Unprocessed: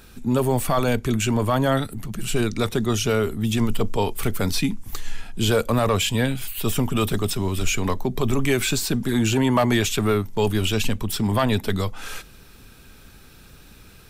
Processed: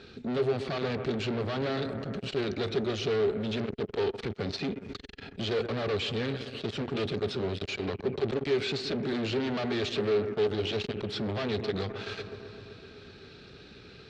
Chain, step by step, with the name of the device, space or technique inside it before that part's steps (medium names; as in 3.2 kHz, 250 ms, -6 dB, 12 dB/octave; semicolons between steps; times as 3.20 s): analogue delay pedal into a guitar amplifier (bucket-brigade echo 128 ms, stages 2048, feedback 75%, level -17 dB; valve stage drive 30 dB, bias 0.3; cabinet simulation 91–4600 Hz, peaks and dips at 410 Hz +10 dB, 990 Hz -7 dB, 4.2 kHz +6 dB)